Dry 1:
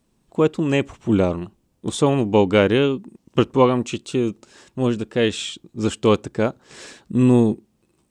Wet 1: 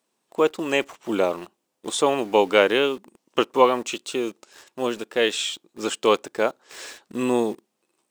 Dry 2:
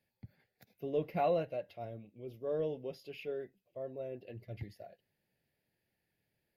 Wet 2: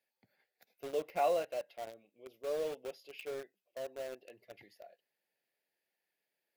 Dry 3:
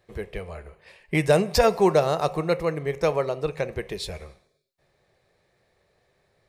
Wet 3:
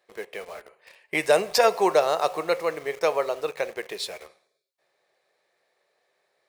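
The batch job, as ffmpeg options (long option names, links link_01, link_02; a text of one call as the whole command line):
ffmpeg -i in.wav -filter_complex "[0:a]highpass=490,asplit=2[link_01][link_02];[link_02]acrusher=bits=6:mix=0:aa=0.000001,volume=-4.5dB[link_03];[link_01][link_03]amix=inputs=2:normalize=0,volume=-2dB" out.wav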